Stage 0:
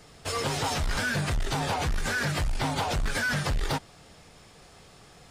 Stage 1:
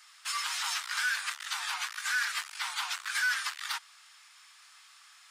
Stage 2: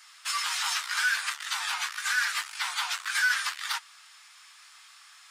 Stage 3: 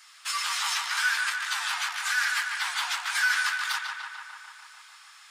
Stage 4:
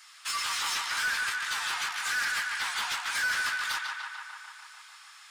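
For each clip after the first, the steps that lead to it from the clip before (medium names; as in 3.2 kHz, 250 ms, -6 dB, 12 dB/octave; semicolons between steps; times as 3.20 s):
steep high-pass 1.1 kHz 36 dB/octave
flange 0.77 Hz, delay 7.5 ms, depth 5.2 ms, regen -43%; trim +7.5 dB
filtered feedback delay 147 ms, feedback 75%, low-pass 3.6 kHz, level -4 dB
saturation -24.5 dBFS, distortion -13 dB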